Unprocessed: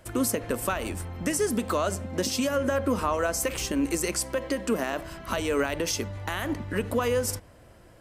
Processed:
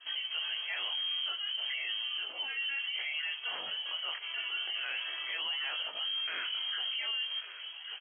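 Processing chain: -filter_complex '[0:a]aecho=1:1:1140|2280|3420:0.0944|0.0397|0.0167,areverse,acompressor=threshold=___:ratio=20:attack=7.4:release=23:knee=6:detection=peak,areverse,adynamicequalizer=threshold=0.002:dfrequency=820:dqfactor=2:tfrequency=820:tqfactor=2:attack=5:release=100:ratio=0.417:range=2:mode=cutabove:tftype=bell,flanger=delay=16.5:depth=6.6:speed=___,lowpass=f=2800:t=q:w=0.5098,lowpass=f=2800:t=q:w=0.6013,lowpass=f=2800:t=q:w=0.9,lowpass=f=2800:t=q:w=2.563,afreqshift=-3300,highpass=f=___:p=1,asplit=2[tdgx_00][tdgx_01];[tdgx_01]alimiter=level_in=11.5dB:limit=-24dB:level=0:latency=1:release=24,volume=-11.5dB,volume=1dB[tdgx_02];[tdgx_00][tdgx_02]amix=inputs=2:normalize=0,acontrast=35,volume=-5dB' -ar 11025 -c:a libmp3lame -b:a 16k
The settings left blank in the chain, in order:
-37dB, 0.38, 590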